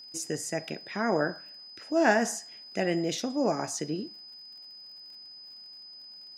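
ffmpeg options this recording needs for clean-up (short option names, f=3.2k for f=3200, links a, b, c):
-af "adeclick=t=4,bandreject=f=5k:w=30"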